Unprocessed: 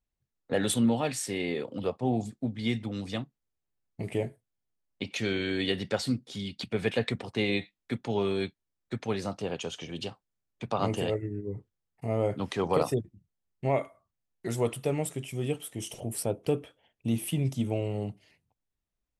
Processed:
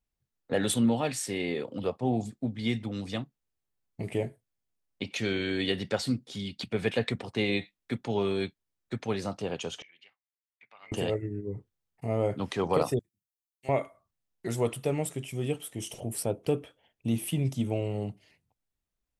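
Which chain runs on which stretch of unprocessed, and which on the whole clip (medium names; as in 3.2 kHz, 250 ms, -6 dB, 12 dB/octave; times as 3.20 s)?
9.82–10.92 s: band-pass filter 2.1 kHz, Q 10 + tape noise reduction on one side only decoder only
12.99–13.69 s: pre-emphasis filter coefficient 0.97 + three bands expanded up and down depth 70%
whole clip: none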